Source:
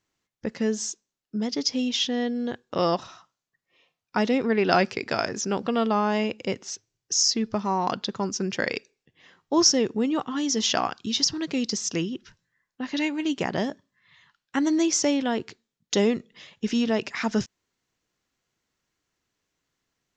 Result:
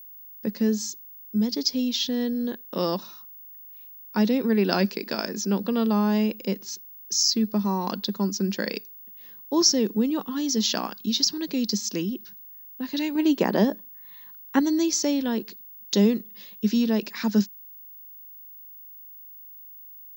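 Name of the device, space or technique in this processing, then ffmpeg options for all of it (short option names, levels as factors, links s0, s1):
old television with a line whistle: -filter_complex "[0:a]asettb=1/sr,asplit=3[s0][s1][s2];[s0]atrim=end=13.154[s3];[s1]atrim=start=13.15:end=14.6,asetpts=PTS-STARTPTS,afade=t=in:d=0.004:c=qsin,afade=t=out:st=1.446:d=0.004:c=qsin,equalizer=f=670:w=0.37:g=9[s4];[s2]atrim=start=14.596[s5];[s3][s4]acrossfade=d=0.004:c1=hsin:c2=qsin[s6];[s6][s5]acrossfade=d=0.004:c1=qsin:c2=hsin,highpass=f=190:w=0.5412,highpass=f=190:w=1.3066,equalizer=f=200:t=q:w=4:g=10,equalizer=f=720:t=q:w=4:g=-8,equalizer=f=1300:t=q:w=4:g=-6,equalizer=f=2100:t=q:w=4:g=-6,equalizer=f=3000:t=q:w=4:g=-4,equalizer=f=4300:t=q:w=4:g=7,lowpass=f=7700:w=0.5412,lowpass=f=7700:w=1.3066,aeval=exprs='val(0)+0.00891*sin(2*PI*15625*n/s)':c=same,volume=0.891"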